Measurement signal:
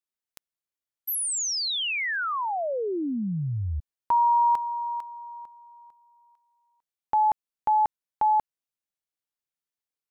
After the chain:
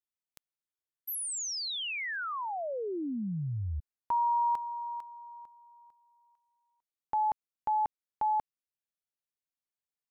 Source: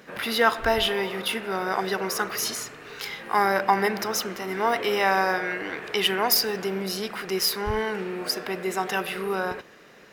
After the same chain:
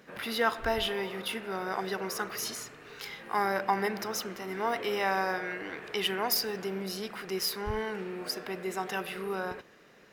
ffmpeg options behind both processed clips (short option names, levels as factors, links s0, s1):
-af "lowshelf=f=340:g=2.5,volume=0.422"